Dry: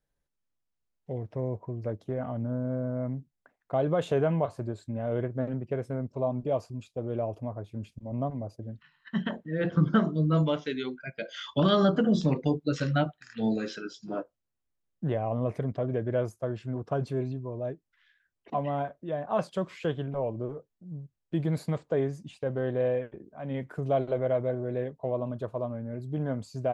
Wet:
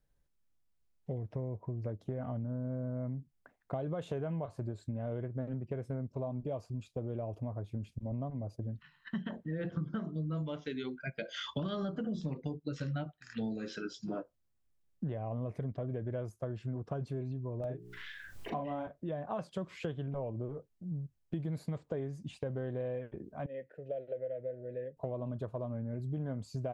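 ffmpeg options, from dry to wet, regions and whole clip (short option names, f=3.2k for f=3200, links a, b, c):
-filter_complex "[0:a]asettb=1/sr,asplit=3[a][b][c];[a]atrim=end=17.604[d];[b]atrim=start=17.6:end=18.87,asetpts=PTS-STARTPTS,afade=t=in:d=0.004:c=qsin,afade=t=out:st=1.266:d=0.004:c=qsin,bandreject=f=60:t=h:w=6,bandreject=f=120:t=h:w=6,bandreject=f=180:t=h:w=6,bandreject=f=240:t=h:w=6,bandreject=f=300:t=h:w=6,bandreject=f=360:t=h:w=6,bandreject=f=420:t=h:w=6,acompressor=mode=upward:threshold=-32dB:ratio=2.5:attack=3.2:release=140:knee=2.83:detection=peak,asplit=2[e][f];[f]adelay=39,volume=-3dB[g];[e][g]amix=inputs=2:normalize=0,atrim=end_sample=56007[h];[c]atrim=start=18.866[i];[d][h]acrossfade=d=0.004:c1=hsin:c2=qsin[j];[j][i]acrossfade=d=0.004:c1=qsin:c2=hsin,asettb=1/sr,asplit=3[k][l][m];[k]atrim=end=23.464[n];[l]atrim=start=23.46:end=24.97,asetpts=PTS-STARTPTS,afade=t=in:d=0.004:c=qsin,afade=t=out:st=1.506:d=0.004:c=qsin,asubboost=boost=10.5:cutoff=190,asplit=3[o][p][q];[o]bandpass=f=530:t=q:w=8,volume=0dB[r];[p]bandpass=f=1.84k:t=q:w=8,volume=-6dB[s];[q]bandpass=f=2.48k:t=q:w=8,volume=-9dB[t];[r][s][t]amix=inputs=3:normalize=0[u];[m]atrim=start=24.966[v];[n][u]acrossfade=d=0.004:c1=hsin:c2=qsin[w];[w][v]acrossfade=d=0.004:c1=qsin:c2=hsin,lowshelf=f=190:g=8,acompressor=threshold=-35dB:ratio=6"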